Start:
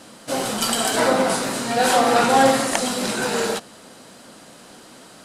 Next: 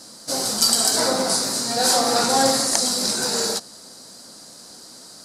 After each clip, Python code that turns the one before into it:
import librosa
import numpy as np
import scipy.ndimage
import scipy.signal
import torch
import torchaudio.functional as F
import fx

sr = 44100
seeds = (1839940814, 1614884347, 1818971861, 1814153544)

y = fx.high_shelf_res(x, sr, hz=3700.0, db=8.0, q=3.0)
y = y * librosa.db_to_amplitude(-4.0)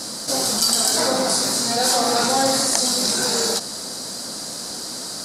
y = fx.env_flatten(x, sr, amount_pct=50)
y = y * librosa.db_to_amplitude(-2.0)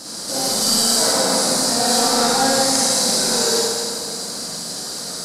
y = fx.rev_schroeder(x, sr, rt60_s=2.0, comb_ms=38, drr_db=-7.0)
y = y * librosa.db_to_amplitude(-5.5)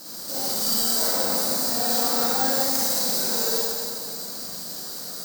y = (np.kron(scipy.signal.resample_poly(x, 1, 2), np.eye(2)[0]) * 2)[:len(x)]
y = y * librosa.db_to_amplitude(-8.5)